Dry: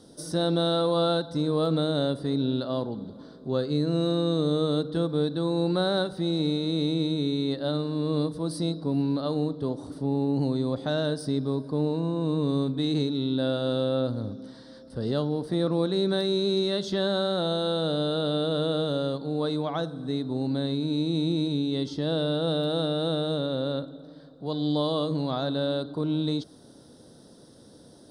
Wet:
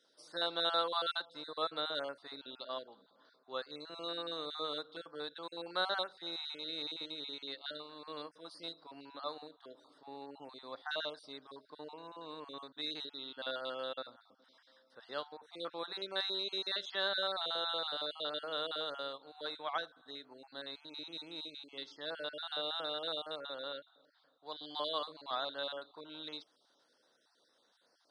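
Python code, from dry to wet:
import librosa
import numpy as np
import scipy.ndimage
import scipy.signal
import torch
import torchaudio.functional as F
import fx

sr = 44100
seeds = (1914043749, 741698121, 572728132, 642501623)

y = fx.spec_dropout(x, sr, seeds[0], share_pct=26)
y = scipy.signal.sosfilt(scipy.signal.butter(2, 1500.0, 'highpass', fs=sr, output='sos'), y)
y = fx.spacing_loss(y, sr, db_at_10k=25)
y = fx.upward_expand(y, sr, threshold_db=-58.0, expansion=1.5)
y = F.gain(torch.from_numpy(y), 9.0).numpy()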